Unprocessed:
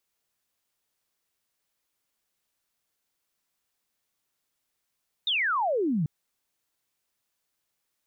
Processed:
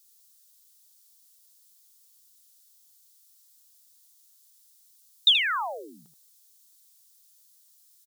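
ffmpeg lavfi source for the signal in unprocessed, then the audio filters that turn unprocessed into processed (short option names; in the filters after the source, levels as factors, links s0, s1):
-f lavfi -i "aevalsrc='0.0708*clip(t/0.002,0,1)*clip((0.79-t)/0.002,0,1)*sin(2*PI*3800*0.79/log(140/3800)*(exp(log(140/3800)*t/0.79)-1))':d=0.79:s=44100"
-af "highpass=1000,aexciter=amount=5.5:drive=6.8:freq=3500,aecho=1:1:78:0.376"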